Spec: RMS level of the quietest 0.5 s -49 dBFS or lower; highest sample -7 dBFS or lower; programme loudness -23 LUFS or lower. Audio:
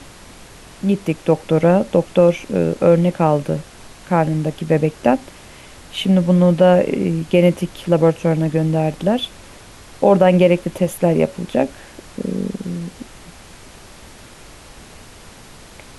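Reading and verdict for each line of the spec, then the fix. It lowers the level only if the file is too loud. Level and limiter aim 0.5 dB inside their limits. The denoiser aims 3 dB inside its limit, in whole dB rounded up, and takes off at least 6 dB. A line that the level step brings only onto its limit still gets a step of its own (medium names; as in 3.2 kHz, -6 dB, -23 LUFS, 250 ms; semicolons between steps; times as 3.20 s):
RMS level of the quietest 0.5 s -41 dBFS: fail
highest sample -1.5 dBFS: fail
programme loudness -17.0 LUFS: fail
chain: noise reduction 6 dB, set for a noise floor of -41 dBFS; trim -6.5 dB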